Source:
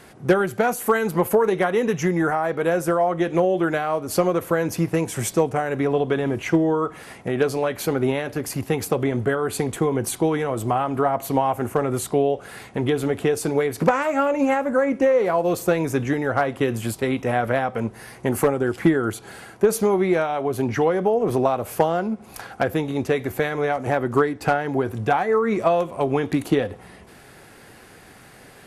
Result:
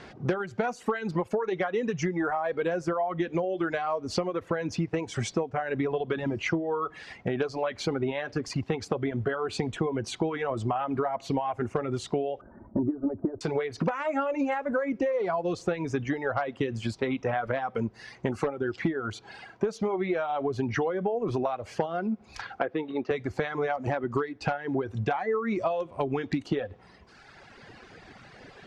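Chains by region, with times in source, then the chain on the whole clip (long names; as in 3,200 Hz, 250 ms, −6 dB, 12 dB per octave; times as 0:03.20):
0:12.41–0:13.41: Bessel low-pass filter 700 Hz, order 8 + parametric band 170 Hz +7.5 dB 1.5 octaves + comb filter 3.3 ms, depth 96%
0:22.59–0:23.11: high-pass filter 280 Hz + high-frequency loss of the air 250 metres
whole clip: reverb reduction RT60 1.6 s; low-pass filter 5,600 Hz 24 dB per octave; downward compressor, threshold −26 dBFS; level +1 dB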